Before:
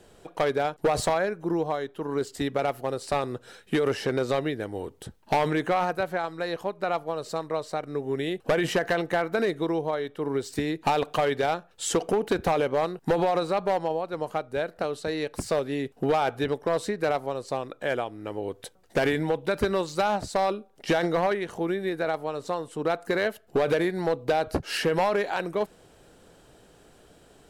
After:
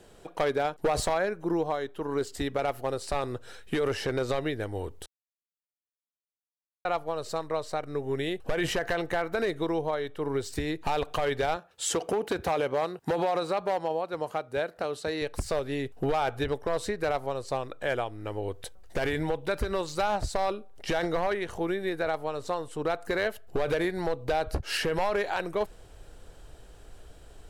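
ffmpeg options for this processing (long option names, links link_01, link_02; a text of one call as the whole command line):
ffmpeg -i in.wav -filter_complex "[0:a]asettb=1/sr,asplit=3[link_01][link_02][link_03];[link_01]atrim=end=11.564[link_04];[link_02]atrim=start=11.56:end=15.22,asetpts=PTS-STARTPTS,afade=type=in:duration=0.004:curve=qsin,afade=type=out:start_time=3.656:duration=0.004:curve=qsin,highpass=130[link_05];[link_03]atrim=start=15.216[link_06];[link_04][link_05]acrossfade=duration=0.004:curve1=hsin:curve2=qsin[link_07];[link_07][link_06]acrossfade=duration=0.004:curve1=qsin:curve2=hsin,asplit=3[link_08][link_09][link_10];[link_08]atrim=end=5.06,asetpts=PTS-STARTPTS,afade=type=out:start_time=5.056:duration=0.004:curve=hsin[link_11];[link_09]atrim=start=5.06:end=6.85,asetpts=PTS-STARTPTS,volume=0[link_12];[link_10]atrim=start=6.85,asetpts=PTS-STARTPTS,afade=type=in:duration=0.004:curve=hsin[link_13];[link_11][link_12][link_13]concat=n=3:v=0:a=1,asubboost=boost=8:cutoff=66,alimiter=limit=-19dB:level=0:latency=1:release=118" out.wav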